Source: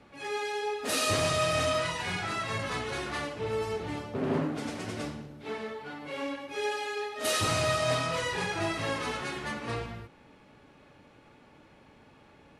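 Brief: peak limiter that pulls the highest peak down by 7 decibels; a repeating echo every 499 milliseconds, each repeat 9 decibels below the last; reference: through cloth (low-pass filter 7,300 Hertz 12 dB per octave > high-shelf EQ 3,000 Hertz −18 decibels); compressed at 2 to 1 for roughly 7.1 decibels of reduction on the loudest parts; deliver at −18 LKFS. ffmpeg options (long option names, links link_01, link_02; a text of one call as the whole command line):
ffmpeg -i in.wav -af "acompressor=threshold=-37dB:ratio=2,alimiter=level_in=5dB:limit=-24dB:level=0:latency=1,volume=-5dB,lowpass=7300,highshelf=frequency=3000:gain=-18,aecho=1:1:499|998|1497|1996:0.355|0.124|0.0435|0.0152,volume=22dB" out.wav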